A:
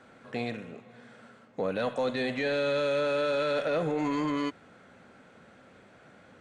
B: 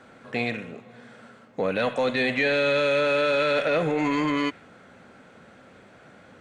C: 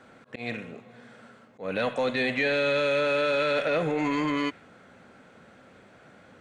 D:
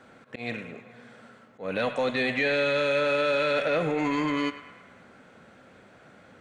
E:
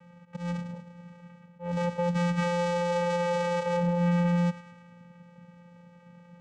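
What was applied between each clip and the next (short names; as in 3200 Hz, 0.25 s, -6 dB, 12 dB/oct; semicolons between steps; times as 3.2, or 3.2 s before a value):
dynamic EQ 2300 Hz, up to +7 dB, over -51 dBFS, Q 1.5; gain +4.5 dB
auto swell 0.157 s; gain -2.5 dB
narrowing echo 0.105 s, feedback 66%, band-pass 1600 Hz, level -11.5 dB
vocoder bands 4, square 174 Hz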